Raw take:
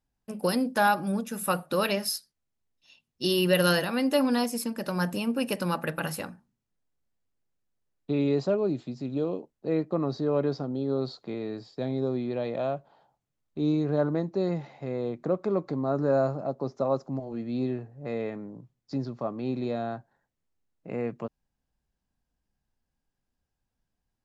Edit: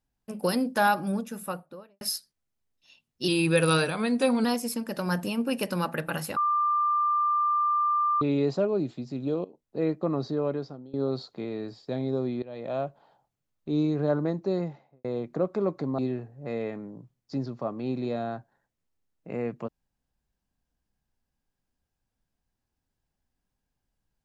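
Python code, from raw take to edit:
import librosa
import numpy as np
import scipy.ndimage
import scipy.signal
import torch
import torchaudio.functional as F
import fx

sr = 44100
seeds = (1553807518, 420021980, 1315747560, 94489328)

y = fx.studio_fade_out(x, sr, start_s=1.03, length_s=0.98)
y = fx.studio_fade_out(y, sr, start_s=14.38, length_s=0.56)
y = fx.edit(y, sr, fx.speed_span(start_s=3.28, length_s=1.06, speed=0.91),
    fx.bleep(start_s=6.26, length_s=1.85, hz=1190.0, db=-21.5),
    fx.fade_in_from(start_s=9.34, length_s=0.32, floor_db=-18.5),
    fx.fade_out_to(start_s=10.17, length_s=0.66, floor_db=-21.0),
    fx.fade_in_from(start_s=12.32, length_s=0.39, floor_db=-18.5),
    fx.cut(start_s=15.88, length_s=1.7), tone=tone)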